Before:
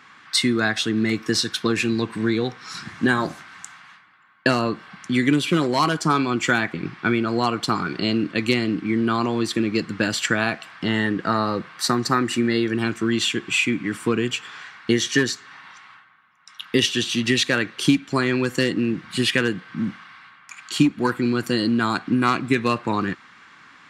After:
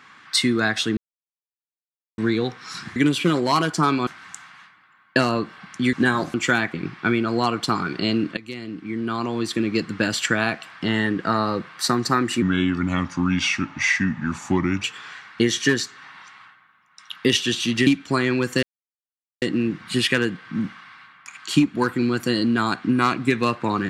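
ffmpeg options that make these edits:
-filter_complex "[0:a]asplit=12[a][b][c][d][e][f][g][h][i][j][k][l];[a]atrim=end=0.97,asetpts=PTS-STARTPTS,afade=t=out:st=0.966:d=0.004:c=hsin[m];[b]atrim=start=0.97:end=2.18,asetpts=PTS-STARTPTS,volume=0[n];[c]atrim=start=2.18:end=2.962,asetpts=PTS-STARTPTS,afade=t=in:d=0.004:c=hsin[o];[d]atrim=start=5.228:end=6.342[p];[e]atrim=start=3.368:end=5.232[q];[f]atrim=start=2.958:end=3.372[r];[g]atrim=start=6.338:end=8.37,asetpts=PTS-STARTPTS,afade=t=out:st=2.028:d=0.004:c=hsin:silence=0.105925[s];[h]atrim=start=8.37:end=12.424,asetpts=PTS-STARTPTS,afade=t=in:d=1.38:silence=0.105925[t];[i]atrim=start=12.42:end=14.33,asetpts=PTS-STARTPTS,asetrate=34839,aresample=44100[u];[j]atrim=start=14.326:end=17.362[v];[k]atrim=start=17.888:end=18.65,asetpts=PTS-STARTPTS,afade=t=out:st=0.758:d=0.004:c=hsin,apad=pad_dur=0.79[w];[l]atrim=start=18.65,asetpts=PTS-STARTPTS,afade=t=in:d=0.004:c=hsin[x];[m][n][o]concat=n=3:v=0:a=1[y];[y][p]acrossfade=d=0.004:c1=hsin:c2=hsin[z];[z][q]acrossfade=d=0.004:c1=hsin:c2=hsin[aa];[aa][r]acrossfade=d=0.004:c1=hsin:c2=hsin[ab];[s][t]concat=n=2:v=0:a=1[ac];[ab][ac]acrossfade=d=0.004:c1=hsin:c2=hsin[ad];[ad][u]acrossfade=d=0.004:c1=hsin:c2=hsin[ae];[ae][v]acrossfade=d=0.004:c1=hsin:c2=hsin[af];[w][x]concat=n=2:v=0:a=1[ag];[af][ag]acrossfade=d=0.004:c1=hsin:c2=hsin"

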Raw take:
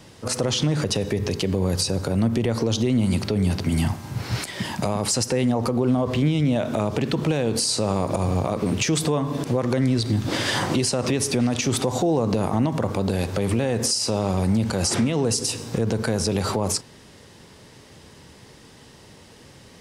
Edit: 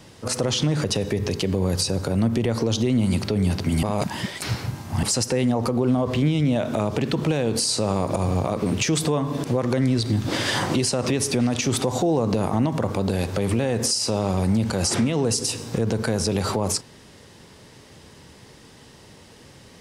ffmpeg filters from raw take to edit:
-filter_complex "[0:a]asplit=3[a][b][c];[a]atrim=end=3.832[d];[b]atrim=start=3.828:end=5.032,asetpts=PTS-STARTPTS,areverse[e];[c]atrim=start=5.028[f];[d][e]acrossfade=d=0.004:c1=hsin:c2=hsin[g];[g][f]acrossfade=d=0.004:c1=hsin:c2=hsin"

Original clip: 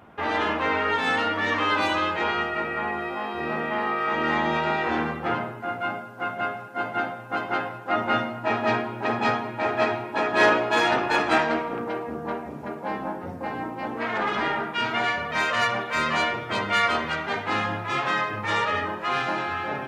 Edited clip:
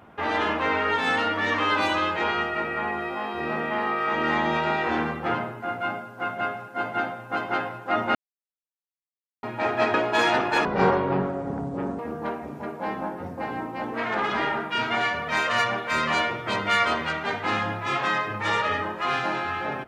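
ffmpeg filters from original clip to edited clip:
-filter_complex "[0:a]asplit=6[a][b][c][d][e][f];[a]atrim=end=8.15,asetpts=PTS-STARTPTS,afade=t=out:st=8.146:d=0.004:c=hsin[g];[b]atrim=start=8.15:end=9.43,asetpts=PTS-STARTPTS,volume=0[h];[c]atrim=start=9.43:end=9.942,asetpts=PTS-STARTPTS,afade=t=in:d=0.004:c=hsin[i];[d]atrim=start=10.518:end=11.234[j];[e]atrim=start=11.23:end=12.02,asetpts=PTS-STARTPTS,asetrate=26019,aresample=44100,atrim=end_sample=59049,asetpts=PTS-STARTPTS[k];[f]atrim=start=12.016[l];[g][h][i]concat=n=3:v=0:a=1[m];[m][j]acrossfade=d=0.004:c1=hsin:c2=hsin[n];[n][k]acrossfade=d=0.004:c1=hsin:c2=hsin[o];[o][l]acrossfade=d=0.004:c1=hsin:c2=hsin"

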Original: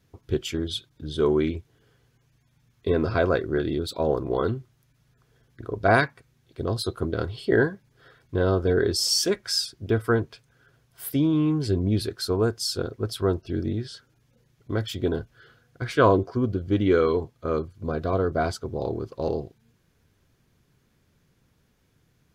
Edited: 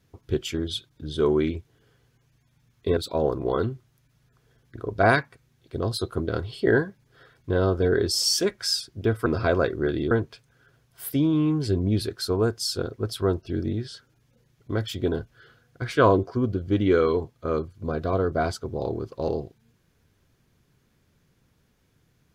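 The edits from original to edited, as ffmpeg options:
-filter_complex "[0:a]asplit=4[a][b][c][d];[a]atrim=end=2.972[e];[b]atrim=start=3.818:end=10.112[f];[c]atrim=start=2.968:end=3.822[g];[d]atrim=start=10.108[h];[e][f]acrossfade=d=0.004:c1=hsin:c2=hsin[i];[i][g]acrossfade=d=0.004:c1=hsin:c2=hsin[j];[j][h]acrossfade=d=0.004:c1=hsin:c2=hsin"

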